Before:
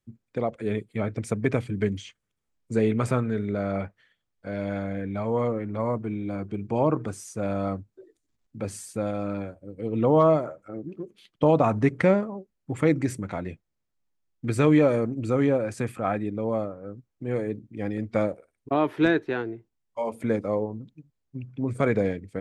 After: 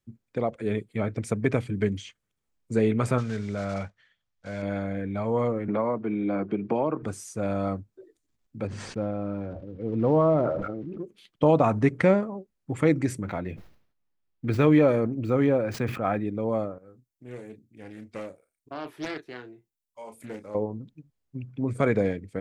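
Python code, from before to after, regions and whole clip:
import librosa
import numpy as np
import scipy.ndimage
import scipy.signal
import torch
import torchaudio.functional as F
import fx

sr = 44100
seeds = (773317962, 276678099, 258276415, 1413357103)

y = fx.chain(x, sr, fx.block_float(bits=5),
    fx.lowpass(hz=7100.0, slope=24),
    fx.peak_eq(hz=340.0, db=-7.5, octaves=1.3), at=(3.18, 4.63))
y = fx.chain(y, sr, fx.bandpass_edges(low_hz=200.0, high_hz=3800.0),
    fx.band_squash(depth_pct=100), at=(5.68, 7.03))
y = fx.chain(y, sr, fx.block_float(bits=5),
    fx.spacing_loss(db_at_10k=44),
    fx.sustainer(db_per_s=34.0), at=(8.67, 10.98))
y = fx.chain(y, sr, fx.median_filter(points=5),
    fx.peak_eq(hz=8100.0, db=-6.5, octaves=1.1),
    fx.sustainer(db_per_s=97.0), at=(13.22, 16.28))
y = fx.chain(y, sr, fx.pre_emphasis(coefficient=0.8),
    fx.doubler(ms=32.0, db=-8.5),
    fx.doppler_dist(depth_ms=0.43), at=(16.78, 20.55))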